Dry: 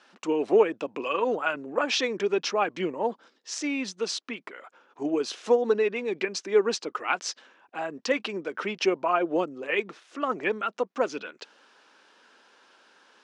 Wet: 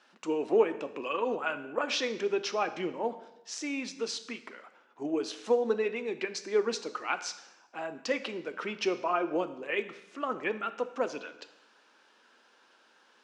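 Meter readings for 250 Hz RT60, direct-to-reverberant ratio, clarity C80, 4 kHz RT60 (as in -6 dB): 0.85 s, 10.0 dB, 15.0 dB, 0.85 s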